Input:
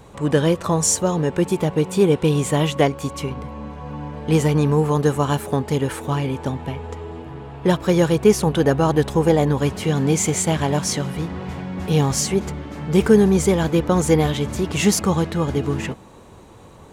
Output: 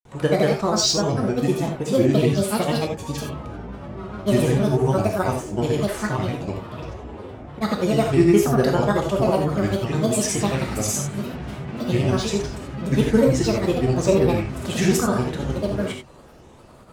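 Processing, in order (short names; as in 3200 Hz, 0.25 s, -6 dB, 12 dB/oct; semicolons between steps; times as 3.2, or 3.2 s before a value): grains, pitch spread up and down by 7 st; non-linear reverb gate 0.11 s flat, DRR 1.5 dB; gain -3 dB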